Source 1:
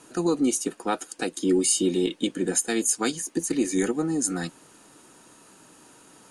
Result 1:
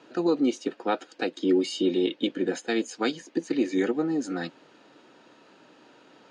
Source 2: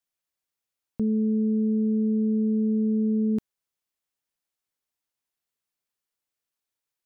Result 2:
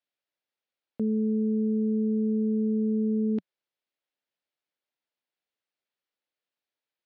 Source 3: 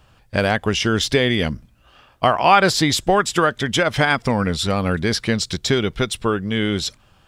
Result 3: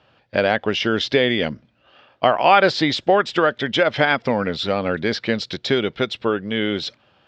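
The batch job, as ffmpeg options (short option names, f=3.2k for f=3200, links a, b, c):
-af "highpass=170,equalizer=f=180:t=q:w=4:g=-4,equalizer=f=560:t=q:w=4:g=4,equalizer=f=1.1k:t=q:w=4:g=-4,lowpass=f=4.4k:w=0.5412,lowpass=f=4.4k:w=1.3066"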